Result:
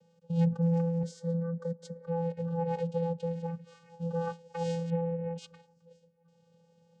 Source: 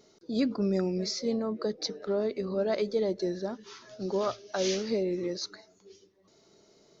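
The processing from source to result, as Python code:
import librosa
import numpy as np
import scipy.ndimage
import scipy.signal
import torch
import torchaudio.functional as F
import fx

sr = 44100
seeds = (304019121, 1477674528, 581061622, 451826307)

y = fx.vocoder(x, sr, bands=8, carrier='square', carrier_hz=168.0)
y = fx.fixed_phaser(y, sr, hz=530.0, stages=8, at=(1.03, 2.07))
y = fx.lowpass(y, sr, hz=2700.0, slope=24, at=(4.9, 5.38))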